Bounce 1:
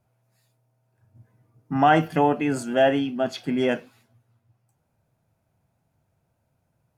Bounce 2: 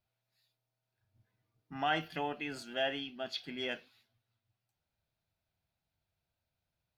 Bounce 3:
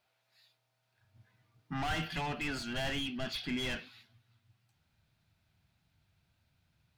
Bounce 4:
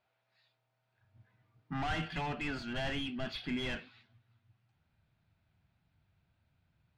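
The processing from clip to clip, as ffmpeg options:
-af "equalizer=f=125:t=o:w=1:g=-10,equalizer=f=250:t=o:w=1:g=-8,equalizer=f=500:t=o:w=1:g=-6,equalizer=f=1000:t=o:w=1:g=-6,equalizer=f=4000:t=o:w=1:g=11,equalizer=f=8000:t=o:w=1:g=-10,volume=0.355"
-filter_complex "[0:a]asplit=2[s0][s1];[s1]highpass=f=720:p=1,volume=22.4,asoftclip=type=tanh:threshold=0.0944[s2];[s0][s2]amix=inputs=2:normalize=0,lowpass=f=3500:p=1,volume=0.501,asubboost=boost=11:cutoff=170,volume=0.447"
-af "adynamicsmooth=sensitivity=4.5:basefreq=3300"

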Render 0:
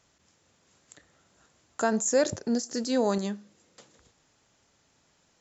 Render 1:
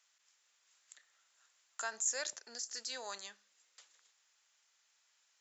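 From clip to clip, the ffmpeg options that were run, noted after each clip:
-af "highpass=1500,volume=0.596"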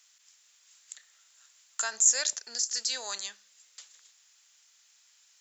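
-af "highshelf=f=2300:g=12,volume=1.26"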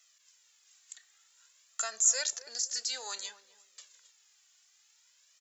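-filter_complex "[0:a]flanger=delay=1.5:depth=1.3:regen=4:speed=0.55:shape=triangular,asplit=2[s0][s1];[s1]adelay=253,lowpass=f=860:p=1,volume=0.224,asplit=2[s2][s3];[s3]adelay=253,lowpass=f=860:p=1,volume=0.28,asplit=2[s4][s5];[s5]adelay=253,lowpass=f=860:p=1,volume=0.28[s6];[s0][s2][s4][s6]amix=inputs=4:normalize=0"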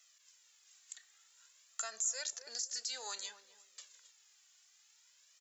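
-af "acompressor=threshold=0.0112:ratio=2,volume=0.891"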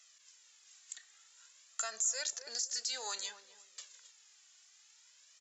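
-filter_complex "[0:a]asplit=2[s0][s1];[s1]asoftclip=type=tanh:threshold=0.0188,volume=0.531[s2];[s0][s2]amix=inputs=2:normalize=0,aresample=22050,aresample=44100"

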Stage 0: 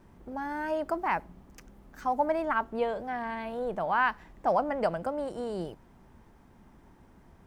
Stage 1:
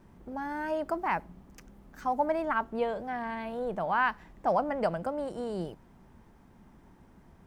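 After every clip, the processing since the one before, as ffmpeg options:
-af "equalizer=f=180:t=o:w=0.79:g=3,volume=0.891"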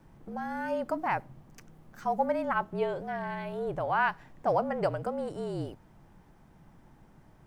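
-af "afreqshift=-44"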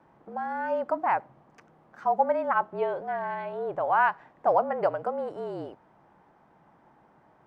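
-af "bandpass=f=860:t=q:w=0.85:csg=0,volume=1.88"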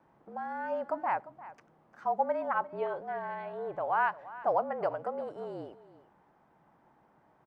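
-af "aecho=1:1:349:0.141,volume=0.531"

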